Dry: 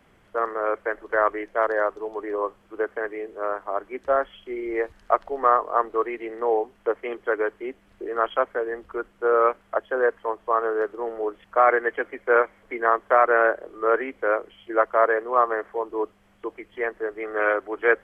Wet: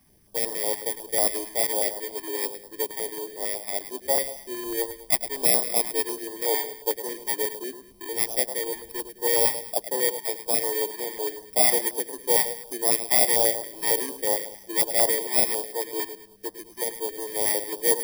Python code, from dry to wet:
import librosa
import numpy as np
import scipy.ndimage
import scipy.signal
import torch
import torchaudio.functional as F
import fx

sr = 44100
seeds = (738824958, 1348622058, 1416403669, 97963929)

y = fx.bit_reversed(x, sr, seeds[0], block=32)
y = fx.echo_feedback(y, sr, ms=105, feedback_pct=39, wet_db=-11.0)
y = fx.filter_held_notch(y, sr, hz=11.0, low_hz=500.0, high_hz=2500.0)
y = y * librosa.db_to_amplitude(-1.5)